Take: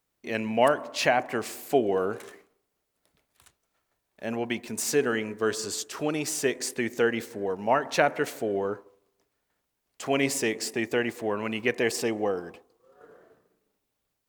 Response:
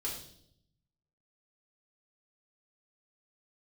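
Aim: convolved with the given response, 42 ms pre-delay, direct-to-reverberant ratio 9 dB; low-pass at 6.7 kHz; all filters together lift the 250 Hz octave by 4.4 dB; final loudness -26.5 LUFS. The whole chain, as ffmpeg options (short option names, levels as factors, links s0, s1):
-filter_complex "[0:a]lowpass=6700,equalizer=f=250:t=o:g=5.5,asplit=2[s0][s1];[1:a]atrim=start_sample=2205,adelay=42[s2];[s1][s2]afir=irnorm=-1:irlink=0,volume=0.299[s3];[s0][s3]amix=inputs=2:normalize=0,volume=0.891"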